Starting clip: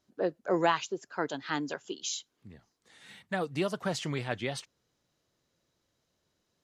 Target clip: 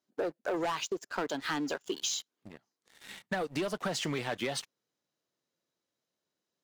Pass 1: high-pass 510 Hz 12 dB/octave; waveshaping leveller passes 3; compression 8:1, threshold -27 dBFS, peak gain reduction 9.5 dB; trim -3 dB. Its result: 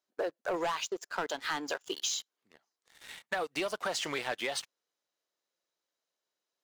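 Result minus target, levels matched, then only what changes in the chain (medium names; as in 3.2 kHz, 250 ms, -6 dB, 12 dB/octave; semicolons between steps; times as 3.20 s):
250 Hz band -5.5 dB
change: high-pass 190 Hz 12 dB/octave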